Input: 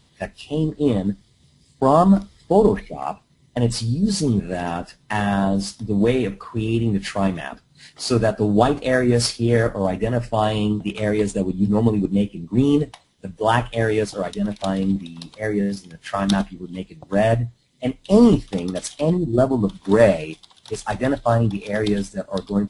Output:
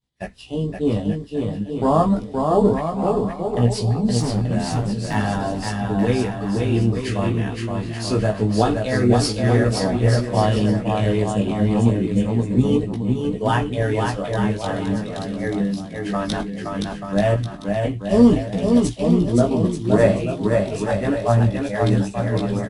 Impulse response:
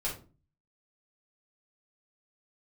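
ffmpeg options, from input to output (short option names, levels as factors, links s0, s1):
-filter_complex "[0:a]agate=range=0.0224:threshold=0.00631:ratio=3:detection=peak,lowshelf=f=130:g=6,asettb=1/sr,asplit=3[s0][s1][s2];[s0]atrim=end=4.194[s3];[s1]atrim=start=4.19:end=5.14,asetpts=PTS-STARTPTS,afade=t=in:d=0.004:c=qsin,afade=t=out:st=0.946:d=0.004:c=qsin,aeval=exprs='0.188*(abs(mod(val(0)/0.188+3,4)-2)-1)':c=same[s4];[s2]atrim=start=5.136[s5];[s3][s4]acrossfade=d=0.004:c1=hsin:c2=qsin[s6];[s6][s5]acrossfade=d=0.004:c1=qsin:c2=hsin,flanger=delay=16:depth=3.6:speed=0.32,aecho=1:1:520|884|1139|1317|1442:0.631|0.398|0.251|0.158|0.1"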